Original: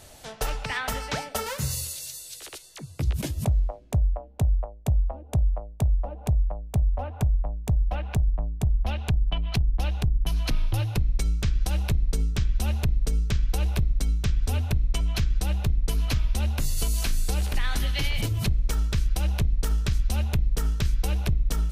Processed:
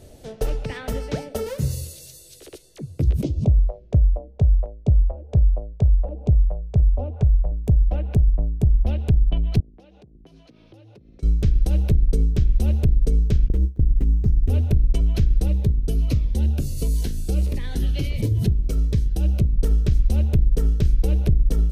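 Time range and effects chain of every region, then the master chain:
3.23–7.61 LPF 6200 Hz 24 dB/oct + LFO notch square 1.4 Hz 270–1700 Hz
9.6–11.23 BPF 250–6500 Hz + compressor 8:1, threshold -49 dBFS
13.48–14.5 inverse Chebyshev band-stop 900–2500 Hz, stop band 60 dB + gate with hold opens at -17 dBFS, closes at -24 dBFS + running maximum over 9 samples
15.48–19.56 HPF 45 Hz + cascading phaser falling 1.5 Hz
whole clip: resonant low shelf 660 Hz +12 dB, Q 1.5; notch 7300 Hz, Q 23; gain -6 dB

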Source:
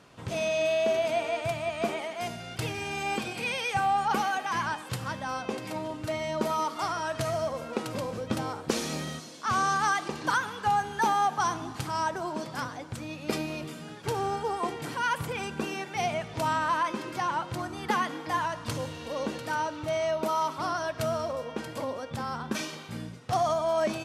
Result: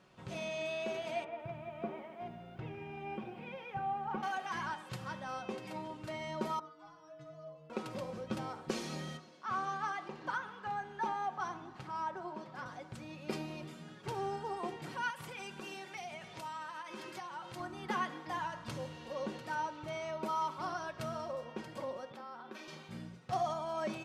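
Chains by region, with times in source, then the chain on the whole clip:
1.24–4.23 tape spacing loss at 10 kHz 42 dB + notch 4400 Hz, Q 11 + lo-fi delay 0.151 s, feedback 55%, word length 9-bit, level -14.5 dB
6.59–7.7 air absorption 120 m + metallic resonator 150 Hz, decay 0.5 s, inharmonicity 0.008
9.17–12.66 LPF 2000 Hz 6 dB/oct + low shelf 340 Hz -6 dB
15.1–17.6 tilt +2 dB/oct + compressor 10:1, threshold -32 dBFS
22.12–22.68 HPF 260 Hz 24 dB/oct + compressor 2.5:1, threshold -37 dBFS + bell 8200 Hz -8.5 dB 1.4 oct
whole clip: high shelf 6800 Hz -9.5 dB; comb 5.4 ms, depth 45%; de-hum 83.36 Hz, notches 28; gain -8.5 dB

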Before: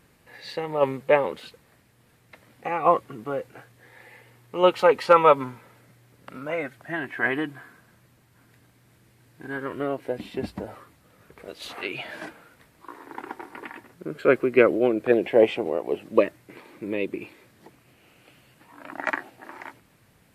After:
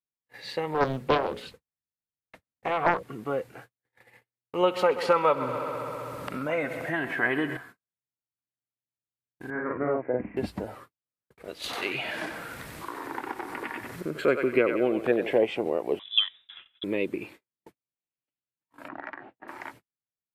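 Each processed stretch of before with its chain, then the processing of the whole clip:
0.74–3.03 low shelf 130 Hz +10.5 dB + notches 60/120/180/240/300/360/420/480/540/600 Hz + Doppler distortion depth 0.78 ms
4.61–7.57 multi-head echo 65 ms, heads first and second, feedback 70%, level -19 dB + upward compressor, threshold -24 dBFS
9.5–10.37 steep low-pass 2300 Hz 72 dB/oct + doubler 48 ms -2 dB + three-band expander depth 40%
11.64–15.38 upward compressor, threshold -27 dBFS + thinning echo 92 ms, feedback 39%, high-pass 820 Hz, level -5.5 dB
15.99–16.84 expander -52 dBFS + high shelf 2700 Hz -11.5 dB + inverted band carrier 3700 Hz
18.88–19.48 Bessel low-pass 1900 Hz, order 4 + compressor 16:1, threshold -33 dBFS
whole clip: gate -47 dBFS, range -47 dB; compressor 2.5:1, threshold -21 dBFS

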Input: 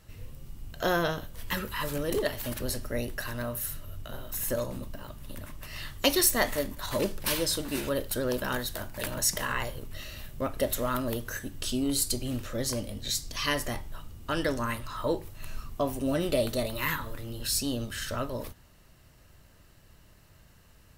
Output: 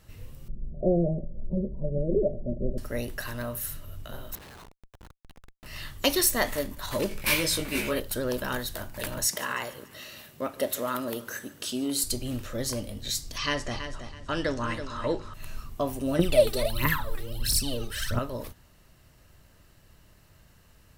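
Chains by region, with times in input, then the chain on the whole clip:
0.48–2.78 Chebyshev low-pass 660 Hz, order 6 + low shelf 460 Hz +5 dB + comb 5.3 ms, depth 68%
4.35–5.66 brick-wall FIR band-pass 720–12000 Hz + resonant high shelf 5600 Hz -12 dB, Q 3 + Schmitt trigger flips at -40 dBFS
7.09–8 bell 2300 Hz +14 dB 0.31 oct + doubler 19 ms -2.5 dB
9.27–12.04 HPF 200 Hz + feedback echo 0.146 s, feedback 53%, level -20 dB
13.38–15.34 LPF 7500 Hz 24 dB/oct + feedback echo 0.327 s, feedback 27%, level -9.5 dB
16.19–18.19 notch 6700 Hz, Q 8.4 + phaser 1.5 Hz, delay 2.7 ms, feedback 74%
whole clip: dry

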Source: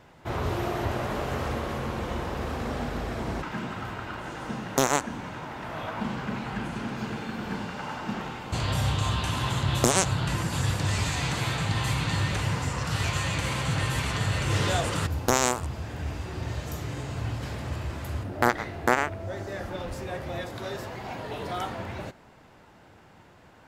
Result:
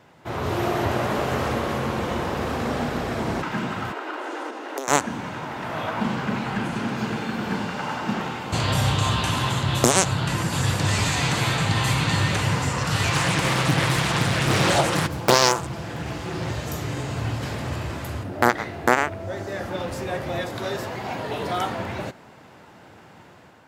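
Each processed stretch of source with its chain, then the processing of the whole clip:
3.92–4.88 tilt -1.5 dB/oct + compressor, threshold -30 dBFS + steep high-pass 280 Hz 72 dB/oct
13.1–16.51 comb 5.9 ms, depth 57% + Doppler distortion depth 0.85 ms
whole clip: HPF 99 Hz; AGC gain up to 5.5 dB; gain +1 dB

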